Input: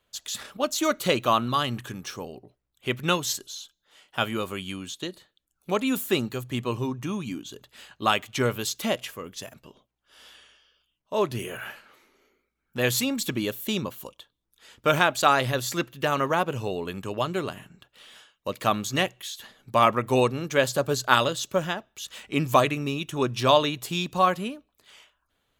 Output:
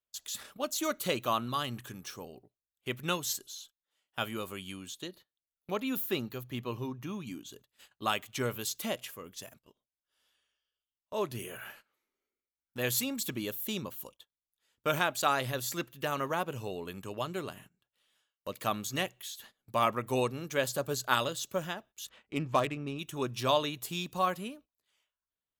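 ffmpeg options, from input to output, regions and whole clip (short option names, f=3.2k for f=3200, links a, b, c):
-filter_complex "[0:a]asettb=1/sr,asplit=3[a][b][c];[a]atrim=end=5.084[d];[b]atrim=start=5.08:end=7.27,asetpts=PTS-STARTPTS,afade=t=in:d=0.004:c=qsin,afade=t=out:st=2.186:d=0.004:c=qsin,equalizer=f=8.4k:w=2.2:g=-14.5,asoftclip=type=hard:threshold=-12dB[e];[c]atrim=start=7.266[f];[d][e]acrossfade=d=0.004:c1=hsin:c2=qsin[g];[g][f]acrossfade=d=0.004:c1=qsin:c2=hsin,asettb=1/sr,asplit=3[h][i][j];[h]atrim=end=22.094[k];[i]atrim=start=22.09:end=22.99,asetpts=PTS-STARTPTS,afade=t=in:d=0.004:c=qsin,afade=t=out:st=0.896:d=0.004:c=qsin,highshelf=f=5.1k:g=-3,adynamicsmooth=sensitivity=2:basefreq=2.3k[l];[j]atrim=start=22.986[m];[k][l]acrossfade=d=0.004:c1=hsin:c2=qsin[n];[n][m]acrossfade=d=0.004:c1=qsin:c2=hsin,agate=range=-17dB:threshold=-46dB:ratio=16:detection=peak,highshelf=f=10k:g=11.5,volume=-8.5dB"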